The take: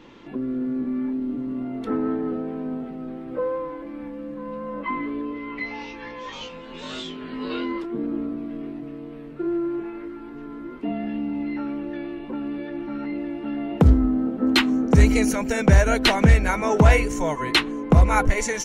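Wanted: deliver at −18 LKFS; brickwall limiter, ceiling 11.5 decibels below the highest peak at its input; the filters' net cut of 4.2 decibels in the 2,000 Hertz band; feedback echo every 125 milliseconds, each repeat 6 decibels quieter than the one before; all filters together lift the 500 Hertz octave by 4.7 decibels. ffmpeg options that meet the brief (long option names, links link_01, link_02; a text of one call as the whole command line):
ffmpeg -i in.wav -af "equalizer=frequency=500:width_type=o:gain=6,equalizer=frequency=2000:width_type=o:gain=-5.5,alimiter=limit=-13.5dB:level=0:latency=1,aecho=1:1:125|250|375|500|625|750:0.501|0.251|0.125|0.0626|0.0313|0.0157,volume=6dB" out.wav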